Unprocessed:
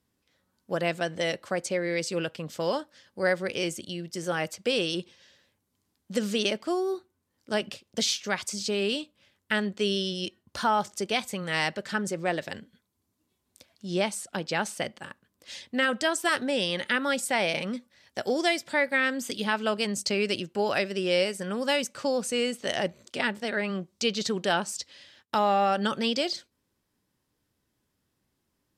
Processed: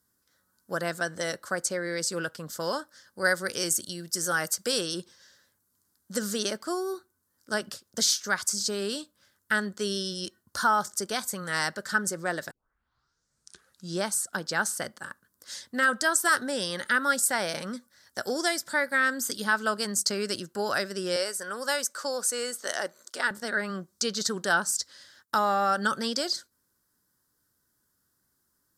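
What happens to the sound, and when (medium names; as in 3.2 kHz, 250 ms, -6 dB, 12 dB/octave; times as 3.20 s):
3.24–4.81 s: treble shelf 3.5 kHz +7 dB
12.51 s: tape start 1.47 s
21.16–23.31 s: high-pass 390 Hz
whole clip: FFT filter 800 Hz 0 dB, 1.5 kHz +11 dB, 2.5 kHz -9 dB, 4.6 kHz +7 dB, 13 kHz +15 dB; trim -3.5 dB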